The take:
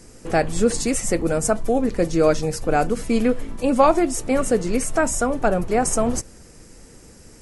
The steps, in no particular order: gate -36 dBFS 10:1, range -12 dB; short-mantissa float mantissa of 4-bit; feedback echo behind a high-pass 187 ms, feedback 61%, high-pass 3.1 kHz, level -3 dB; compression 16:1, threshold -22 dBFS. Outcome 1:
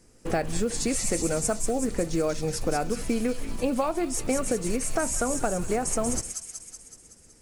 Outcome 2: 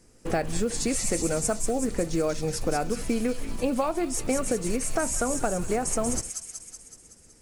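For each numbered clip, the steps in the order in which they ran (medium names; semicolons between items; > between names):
gate > compression > feedback echo behind a high-pass > short-mantissa float; compression > gate > feedback echo behind a high-pass > short-mantissa float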